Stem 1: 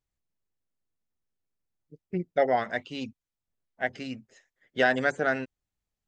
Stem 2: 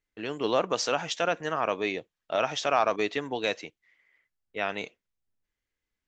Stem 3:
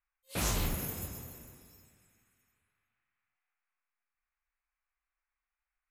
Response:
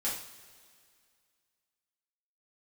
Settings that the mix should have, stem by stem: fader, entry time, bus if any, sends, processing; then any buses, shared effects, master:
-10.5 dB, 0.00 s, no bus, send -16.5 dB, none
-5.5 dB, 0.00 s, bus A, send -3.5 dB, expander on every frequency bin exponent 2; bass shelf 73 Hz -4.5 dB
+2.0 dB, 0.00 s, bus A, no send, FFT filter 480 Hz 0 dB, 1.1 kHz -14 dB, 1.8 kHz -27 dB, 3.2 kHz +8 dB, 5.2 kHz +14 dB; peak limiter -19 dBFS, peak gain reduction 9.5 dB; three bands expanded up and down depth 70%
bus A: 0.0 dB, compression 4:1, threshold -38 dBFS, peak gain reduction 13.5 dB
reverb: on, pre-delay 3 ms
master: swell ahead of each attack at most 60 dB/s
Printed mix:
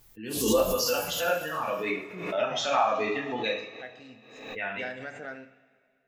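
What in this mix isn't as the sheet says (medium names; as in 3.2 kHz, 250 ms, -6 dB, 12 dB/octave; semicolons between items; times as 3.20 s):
stem 1 -10.5 dB -> -17.0 dB; reverb return +8.0 dB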